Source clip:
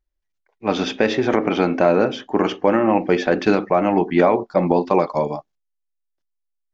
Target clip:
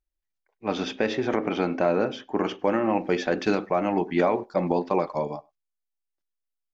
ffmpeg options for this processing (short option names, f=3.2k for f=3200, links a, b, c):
-filter_complex "[0:a]asettb=1/sr,asplit=3[a][b][c];[a]atrim=end=2.594[d];[b]atrim=start=2.59:end=4.79,asetpts=PTS-STARTPTS,afade=t=in:d=0.004:c=qsin,afade=t=out:st=2.196:d=0.004:c=qsin,highshelf=f=5.6k:g=9.5[e];[c]atrim=start=4.786[f];[d][e]acrossfade=d=0.004:c1=hsin:c2=qsin[g];[g][f]acrossfade=d=0.004:c1=qsin:c2=hsin,asplit=2[h][i];[i]adelay=100,highpass=300,lowpass=3.4k,asoftclip=type=hard:threshold=-11.5dB,volume=-26dB[j];[h][j]amix=inputs=2:normalize=0,volume=-7dB"